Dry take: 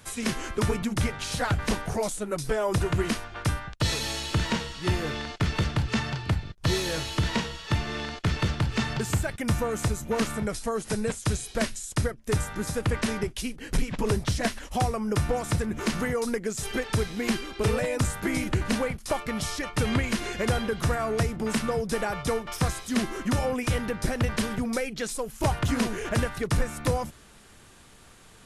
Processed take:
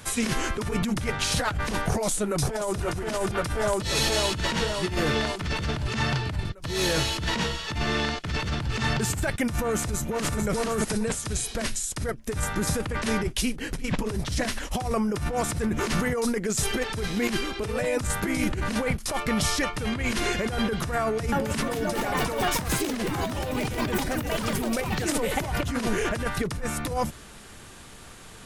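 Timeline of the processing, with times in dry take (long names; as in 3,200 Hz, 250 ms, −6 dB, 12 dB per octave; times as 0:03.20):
0:01.89–0:02.78: delay throw 530 ms, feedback 65%, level −2 dB
0:09.75–0:10.40: delay throw 440 ms, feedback 15%, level −2 dB
0:21.02–0:26.45: delay with pitch and tempo change per echo 302 ms, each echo +4 semitones, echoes 3
whole clip: compressor whose output falls as the input rises −30 dBFS, ratio −1; level +3.5 dB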